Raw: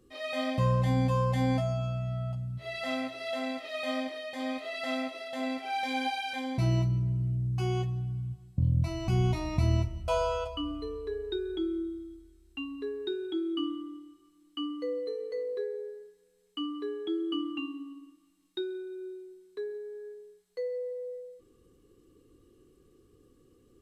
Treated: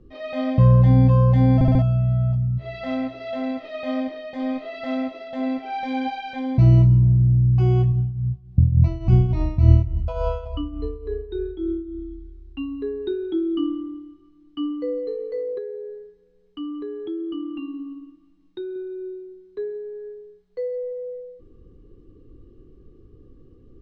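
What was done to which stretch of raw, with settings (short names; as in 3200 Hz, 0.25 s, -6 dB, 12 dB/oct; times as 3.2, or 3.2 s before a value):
1.54 stutter in place 0.07 s, 4 plays
7.92–12.02 tremolo triangle 3.5 Hz, depth 75%
15.58–18.76 compressor 2:1, threshold -39 dBFS
whole clip: LPF 5900 Hz 24 dB/oct; tilt -3.5 dB/oct; gain +3 dB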